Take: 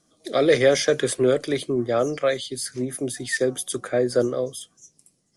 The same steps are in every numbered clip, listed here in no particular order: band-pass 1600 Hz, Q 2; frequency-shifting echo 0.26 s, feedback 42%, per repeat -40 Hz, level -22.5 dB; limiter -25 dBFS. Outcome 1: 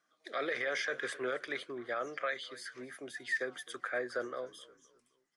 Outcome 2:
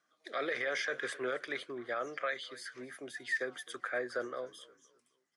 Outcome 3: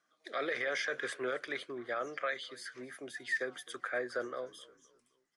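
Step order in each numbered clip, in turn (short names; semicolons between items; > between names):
band-pass > frequency-shifting echo > limiter; frequency-shifting echo > band-pass > limiter; band-pass > limiter > frequency-shifting echo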